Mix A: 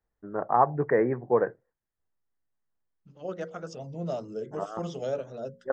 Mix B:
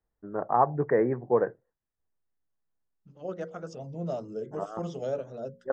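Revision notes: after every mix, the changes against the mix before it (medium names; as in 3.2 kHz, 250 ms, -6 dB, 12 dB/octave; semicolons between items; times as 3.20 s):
master: add peaking EQ 3.5 kHz -5 dB 2.7 oct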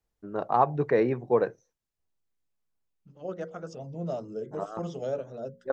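first voice: remove elliptic low-pass 1.9 kHz, stop band 50 dB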